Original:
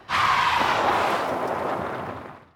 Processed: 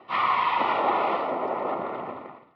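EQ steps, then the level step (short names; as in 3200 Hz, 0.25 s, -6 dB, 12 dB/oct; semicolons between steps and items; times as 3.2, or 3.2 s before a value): BPF 240–5200 Hz; Butterworth band-stop 1600 Hz, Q 4.3; air absorption 350 m; 0.0 dB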